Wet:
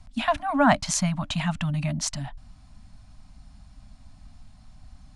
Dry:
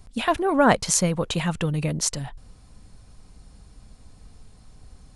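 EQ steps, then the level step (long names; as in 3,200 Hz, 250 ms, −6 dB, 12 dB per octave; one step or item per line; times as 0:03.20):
Chebyshev band-stop filter 290–590 Hz, order 5
high-frequency loss of the air 60 metres
0.0 dB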